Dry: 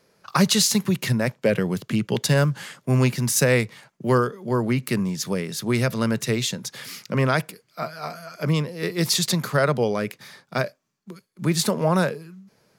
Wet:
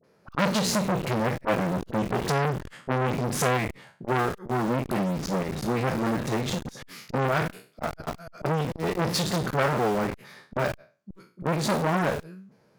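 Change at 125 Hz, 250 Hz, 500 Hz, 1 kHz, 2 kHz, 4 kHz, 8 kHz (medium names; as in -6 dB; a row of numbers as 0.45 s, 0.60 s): -5.5 dB, -4.5 dB, -3.0 dB, +1.5 dB, -3.5 dB, -7.5 dB, -9.5 dB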